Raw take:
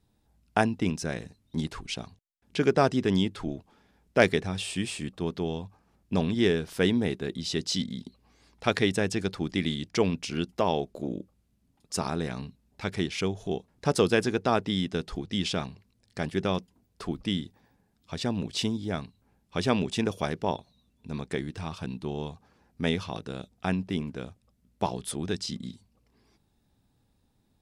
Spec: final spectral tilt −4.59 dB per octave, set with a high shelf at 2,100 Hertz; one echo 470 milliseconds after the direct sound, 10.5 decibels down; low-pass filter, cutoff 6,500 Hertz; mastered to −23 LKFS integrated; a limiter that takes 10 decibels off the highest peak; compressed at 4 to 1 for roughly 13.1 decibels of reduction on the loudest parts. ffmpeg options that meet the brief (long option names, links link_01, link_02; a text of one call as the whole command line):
ffmpeg -i in.wav -af "lowpass=6500,highshelf=frequency=2100:gain=4.5,acompressor=threshold=-31dB:ratio=4,alimiter=limit=-23.5dB:level=0:latency=1,aecho=1:1:470:0.299,volume=14.5dB" out.wav